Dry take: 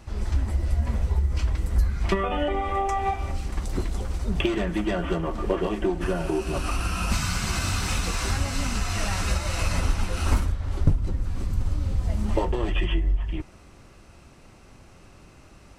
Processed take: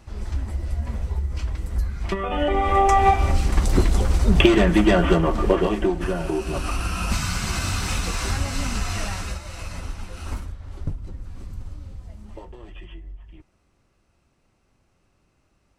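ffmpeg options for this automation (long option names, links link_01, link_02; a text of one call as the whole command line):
ffmpeg -i in.wav -af "volume=9.5dB,afade=type=in:start_time=2.19:duration=0.76:silence=0.251189,afade=type=out:start_time=4.95:duration=1.12:silence=0.375837,afade=type=out:start_time=8.88:duration=0.54:silence=0.334965,afade=type=out:start_time=11.49:duration=0.71:silence=0.421697" out.wav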